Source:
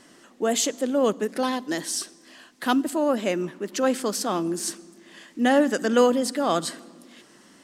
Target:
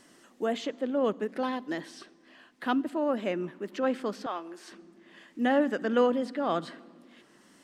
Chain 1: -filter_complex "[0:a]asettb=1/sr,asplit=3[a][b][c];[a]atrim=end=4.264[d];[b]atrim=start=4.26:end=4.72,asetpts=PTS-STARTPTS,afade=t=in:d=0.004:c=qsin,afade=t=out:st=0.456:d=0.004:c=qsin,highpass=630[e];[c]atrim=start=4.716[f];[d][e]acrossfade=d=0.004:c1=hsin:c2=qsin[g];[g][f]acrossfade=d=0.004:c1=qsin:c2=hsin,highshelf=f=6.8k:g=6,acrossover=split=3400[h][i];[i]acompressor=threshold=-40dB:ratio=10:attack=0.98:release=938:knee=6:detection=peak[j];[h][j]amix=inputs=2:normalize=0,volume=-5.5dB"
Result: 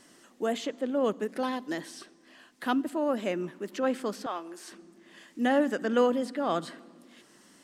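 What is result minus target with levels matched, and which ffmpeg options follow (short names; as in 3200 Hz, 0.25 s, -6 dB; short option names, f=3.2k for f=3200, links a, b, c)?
compressor: peak gain reduction -10 dB
-filter_complex "[0:a]asettb=1/sr,asplit=3[a][b][c];[a]atrim=end=4.264[d];[b]atrim=start=4.26:end=4.72,asetpts=PTS-STARTPTS,afade=t=in:d=0.004:c=qsin,afade=t=out:st=0.456:d=0.004:c=qsin,highpass=630[e];[c]atrim=start=4.716[f];[d][e]acrossfade=d=0.004:c1=hsin:c2=qsin[g];[g][f]acrossfade=d=0.004:c1=qsin:c2=hsin,highshelf=f=6.8k:g=6,acrossover=split=3400[h][i];[i]acompressor=threshold=-51dB:ratio=10:attack=0.98:release=938:knee=6:detection=peak[j];[h][j]amix=inputs=2:normalize=0,volume=-5.5dB"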